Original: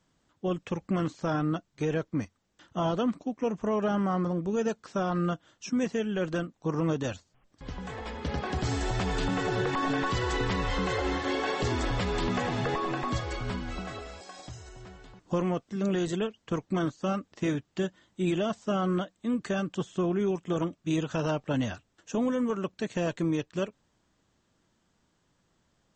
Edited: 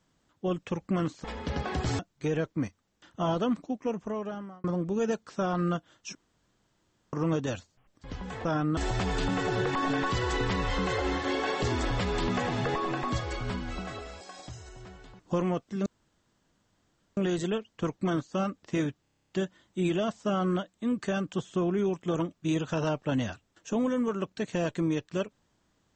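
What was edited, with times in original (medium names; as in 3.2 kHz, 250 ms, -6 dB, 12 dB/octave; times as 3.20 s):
1.24–1.56 s: swap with 8.02–8.77 s
3.28–4.21 s: fade out
5.72–6.70 s: room tone
15.86 s: insert room tone 1.31 s
17.71 s: stutter 0.03 s, 10 plays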